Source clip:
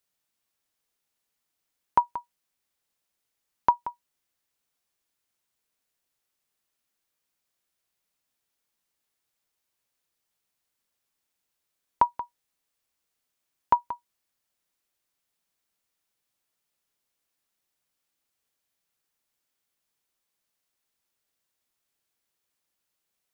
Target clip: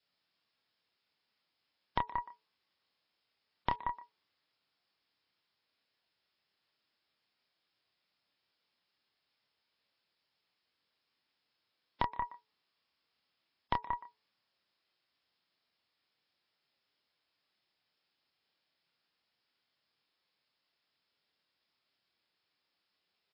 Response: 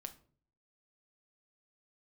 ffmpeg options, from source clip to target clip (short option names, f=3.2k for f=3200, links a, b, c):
-filter_complex "[0:a]acompressor=threshold=-30dB:ratio=16,alimiter=limit=-14dB:level=0:latency=1:release=247,highpass=92,highshelf=f=2.7k:g=5.5,asplit=2[a][b];[b]adelay=28,volume=-6dB[c];[a][c]amix=inputs=2:normalize=0,bandreject=f=434.8:t=h:w=4,bandreject=f=869.6:t=h:w=4,aeval=exprs='0.237*(cos(1*acos(clip(val(0)/0.237,-1,1)))-cos(1*PI/2))+0.00473*(cos(5*acos(clip(val(0)/0.237,-1,1)))-cos(5*PI/2))+0.0335*(cos(8*acos(clip(val(0)/0.237,-1,1)))-cos(8*PI/2))':c=same,asplit=2[d][e];[e]adelay=120,highpass=300,lowpass=3.4k,asoftclip=type=hard:threshold=-23dB,volume=-16dB[f];[d][f]amix=inputs=2:normalize=0,adynamicequalizer=threshold=0.00178:dfrequency=1100:dqfactor=6.1:tfrequency=1100:tqfactor=6.1:attack=5:release=100:ratio=0.375:range=3.5:mode=boostabove:tftype=bell" -ar 12000 -c:a libmp3lame -b:a 24k